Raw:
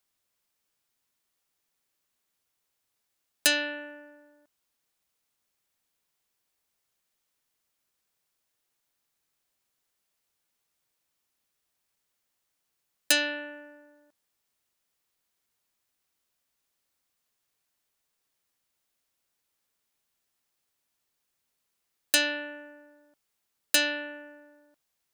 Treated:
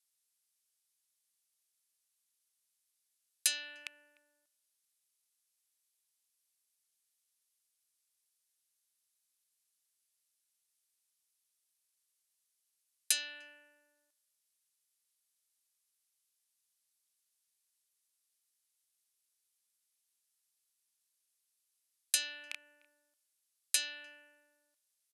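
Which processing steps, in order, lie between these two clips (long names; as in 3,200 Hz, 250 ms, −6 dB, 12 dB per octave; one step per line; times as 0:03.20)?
loose part that buzzes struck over −54 dBFS, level −12 dBFS
Chebyshev low-pass filter 12,000 Hz, order 6
in parallel at +1.5 dB: downward compressor, threshold −33 dBFS, peak gain reduction 13.5 dB
on the sum: first-order pre-emphasis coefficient 0.97
far-end echo of a speakerphone 300 ms, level −27 dB
level −5.5 dB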